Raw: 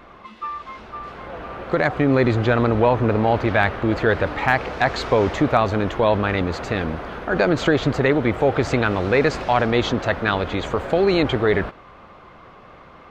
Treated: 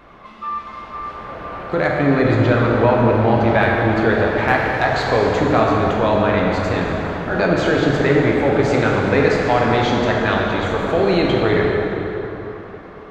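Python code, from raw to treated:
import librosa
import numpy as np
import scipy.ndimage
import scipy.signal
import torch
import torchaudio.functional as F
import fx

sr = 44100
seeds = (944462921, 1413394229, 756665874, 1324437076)

y = fx.rev_plate(x, sr, seeds[0], rt60_s=3.8, hf_ratio=0.6, predelay_ms=0, drr_db=-2.5)
y = y * 10.0 ** (-1.5 / 20.0)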